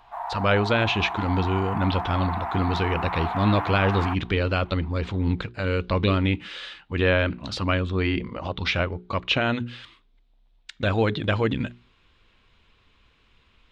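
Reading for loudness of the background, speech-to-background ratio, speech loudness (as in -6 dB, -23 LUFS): -31.0 LUFS, 6.0 dB, -25.0 LUFS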